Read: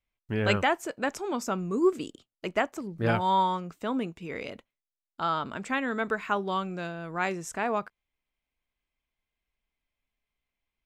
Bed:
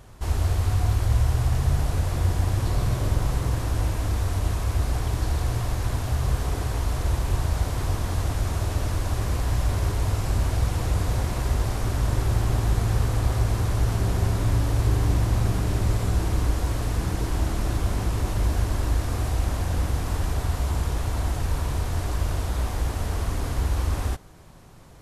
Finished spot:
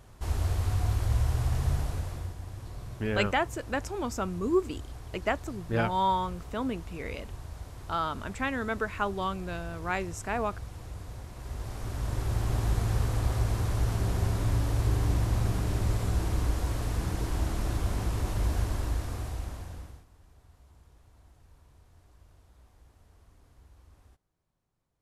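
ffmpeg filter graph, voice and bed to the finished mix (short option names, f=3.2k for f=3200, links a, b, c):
-filter_complex "[0:a]adelay=2700,volume=-2dB[a];[1:a]volume=7dB,afade=t=out:st=1.7:d=0.65:silence=0.251189,afade=t=in:st=11.34:d=1.3:silence=0.237137,afade=t=out:st=18.61:d=1.45:silence=0.0421697[b];[a][b]amix=inputs=2:normalize=0"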